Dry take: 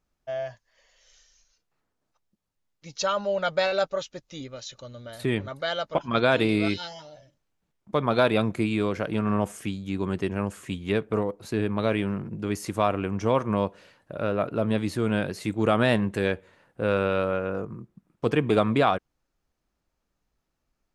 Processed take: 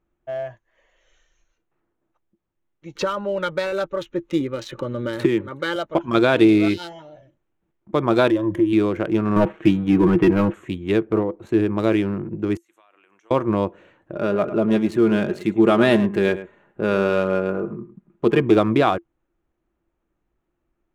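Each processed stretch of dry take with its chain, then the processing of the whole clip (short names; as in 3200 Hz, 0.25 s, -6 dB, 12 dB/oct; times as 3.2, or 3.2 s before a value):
2.95–5.76 Butterworth band-stop 690 Hz, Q 3.1 + high shelf 5400 Hz -9 dB + three-band squash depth 100%
8.3–8.73 ripple EQ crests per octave 1.2, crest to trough 17 dB + compressor 12:1, threshold -26 dBFS
9.36–10.54 inverse Chebyshev low-pass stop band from 6200 Hz + sample leveller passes 2 + comb 6.3 ms, depth 59%
12.57–13.31 HPF 600 Hz 6 dB/oct + differentiator + compressor 16:1, threshold -52 dBFS
14.15–18.42 comb 4.9 ms, depth 52% + echo 0.106 s -13.5 dB
whole clip: Wiener smoothing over 9 samples; bell 340 Hz +14.5 dB 0.21 oct; gain +3 dB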